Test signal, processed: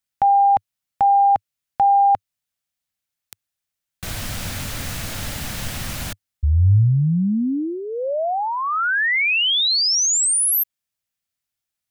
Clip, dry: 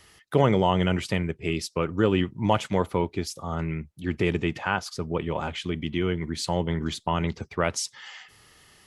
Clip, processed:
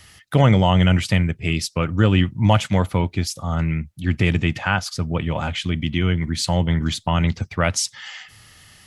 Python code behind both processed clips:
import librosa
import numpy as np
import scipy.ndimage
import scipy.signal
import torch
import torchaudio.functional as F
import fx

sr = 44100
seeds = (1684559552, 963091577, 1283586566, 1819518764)

y = fx.graphic_eq_15(x, sr, hz=(100, 400, 1000), db=(6, -11, -5))
y = y * 10.0 ** (7.5 / 20.0)